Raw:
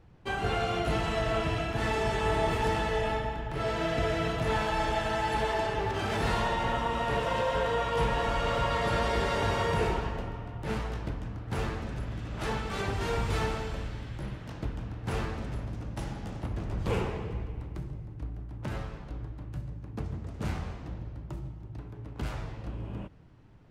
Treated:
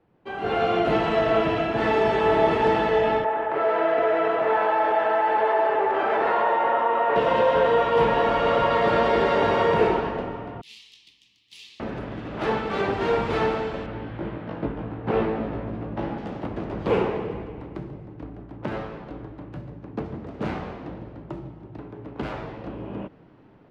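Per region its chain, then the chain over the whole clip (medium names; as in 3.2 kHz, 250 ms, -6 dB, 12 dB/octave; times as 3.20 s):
3.24–7.16 s: three-band isolator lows -21 dB, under 400 Hz, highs -16 dB, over 2.2 kHz + level flattener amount 50%
10.61–11.80 s: inverse Chebyshev high-pass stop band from 1.6 kHz + treble shelf 4.2 kHz +7.5 dB
13.86–16.18 s: low-pass 5 kHz + treble shelf 3.9 kHz -12 dB + doubling 18 ms -2 dB
whole clip: three-band isolator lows -13 dB, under 160 Hz, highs -19 dB, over 4.3 kHz; level rider gain up to 12 dB; peaking EQ 420 Hz +6 dB 2.6 oct; trim -7 dB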